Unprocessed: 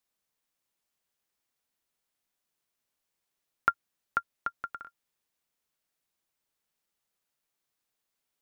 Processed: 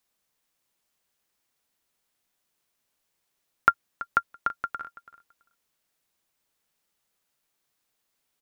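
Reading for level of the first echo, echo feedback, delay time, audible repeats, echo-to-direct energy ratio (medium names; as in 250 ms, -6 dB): -17.0 dB, 15%, 332 ms, 2, -17.0 dB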